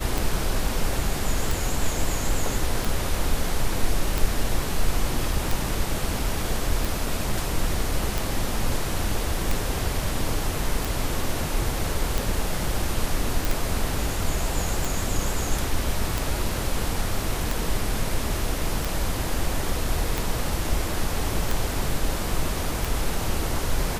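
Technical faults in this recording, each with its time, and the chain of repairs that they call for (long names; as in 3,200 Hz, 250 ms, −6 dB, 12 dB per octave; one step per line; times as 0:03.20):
scratch tick 45 rpm
0:13.45: click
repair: click removal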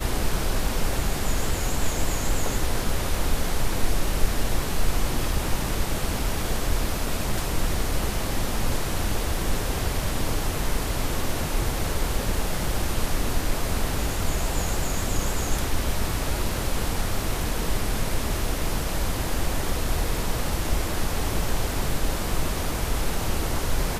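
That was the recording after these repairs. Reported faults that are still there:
none of them is left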